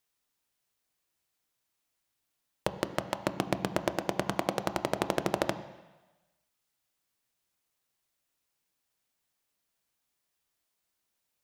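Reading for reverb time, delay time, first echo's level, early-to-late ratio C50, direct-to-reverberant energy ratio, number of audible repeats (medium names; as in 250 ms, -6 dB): 1.1 s, no echo, no echo, 12.5 dB, 10.0 dB, no echo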